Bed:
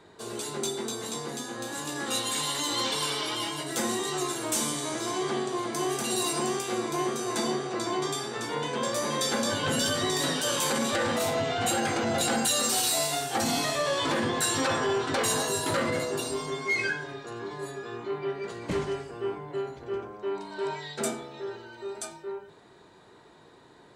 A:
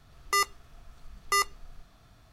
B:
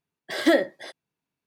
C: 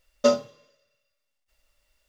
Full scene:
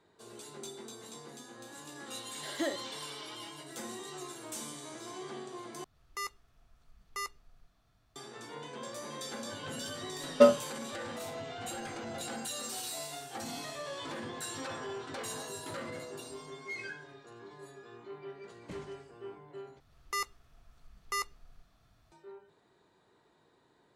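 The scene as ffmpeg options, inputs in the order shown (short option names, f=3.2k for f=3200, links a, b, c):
-filter_complex "[1:a]asplit=2[a][b];[0:a]volume=-13.5dB[c];[3:a]lowpass=2.8k[d];[c]asplit=3[e][f][g];[e]atrim=end=5.844[h];[a]atrim=end=2.32,asetpts=PTS-STARTPTS,volume=-13dB[i];[f]atrim=start=8.156:end=19.804[j];[b]atrim=end=2.32,asetpts=PTS-STARTPTS,volume=-9dB[k];[g]atrim=start=22.116[l];[2:a]atrim=end=1.46,asetpts=PTS-STARTPTS,volume=-15dB,afade=t=in:d=0.004:c=hsin,afade=t=out:st=1.456:d=0.004:c=hsin,adelay=2130[m];[d]atrim=end=2.08,asetpts=PTS-STARTPTS,afade=t=in:d=0.004:c=hsin,afade=t=out:st=2.076:d=0.004:c=hsin,adelay=10160[n];[h][i]acrossfade=d=0.004:c1=hsin:c2=hsin[o];[o][j]acrossfade=d=0.004:c1=hsin:c2=hsin[p];[p][k]acrossfade=d=0.004:c1=hsin:c2=hsin[q];[q][l]acrossfade=d=0.004:c1=hsin:c2=hsin[r];[r][m][n]amix=inputs=3:normalize=0"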